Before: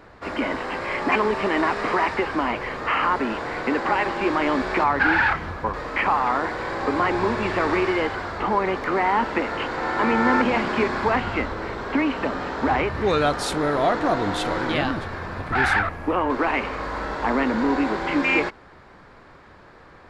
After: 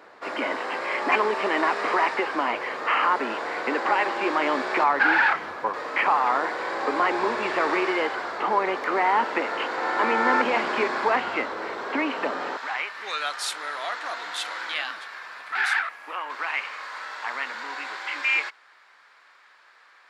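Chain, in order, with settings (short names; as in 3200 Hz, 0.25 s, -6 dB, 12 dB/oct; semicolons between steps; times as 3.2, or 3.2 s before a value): HPF 400 Hz 12 dB/oct, from 12.57 s 1500 Hz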